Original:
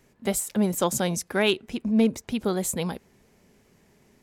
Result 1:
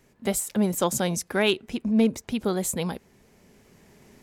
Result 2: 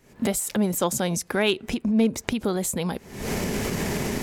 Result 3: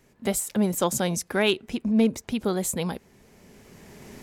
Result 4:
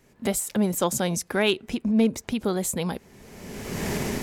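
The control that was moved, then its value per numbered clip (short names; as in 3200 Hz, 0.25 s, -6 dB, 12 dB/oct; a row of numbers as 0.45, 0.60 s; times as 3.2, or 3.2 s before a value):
recorder AGC, rising by: 5.1, 85, 12, 32 dB/s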